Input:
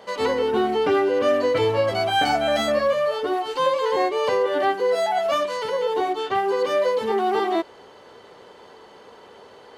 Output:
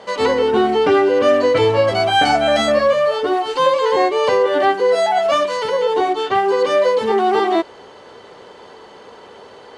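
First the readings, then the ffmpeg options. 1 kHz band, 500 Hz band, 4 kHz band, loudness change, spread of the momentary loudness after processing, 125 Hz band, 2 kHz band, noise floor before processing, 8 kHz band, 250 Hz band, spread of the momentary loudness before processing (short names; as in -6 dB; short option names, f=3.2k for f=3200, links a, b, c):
+6.0 dB, +6.0 dB, +6.0 dB, +6.0 dB, 4 LU, +6.0 dB, +6.0 dB, -47 dBFS, +5.5 dB, +6.0 dB, 4 LU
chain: -af "lowpass=f=9.9k:w=0.5412,lowpass=f=9.9k:w=1.3066,volume=6dB"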